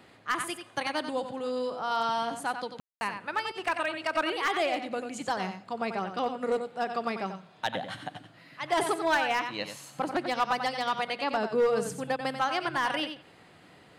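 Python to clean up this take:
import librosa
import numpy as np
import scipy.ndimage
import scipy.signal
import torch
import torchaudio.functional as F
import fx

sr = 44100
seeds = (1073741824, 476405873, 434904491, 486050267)

y = fx.fix_declip(x, sr, threshold_db=-19.5)
y = fx.fix_ambience(y, sr, seeds[0], print_start_s=13.22, print_end_s=13.72, start_s=2.8, end_s=3.01)
y = fx.fix_echo_inverse(y, sr, delay_ms=91, level_db=-8.5)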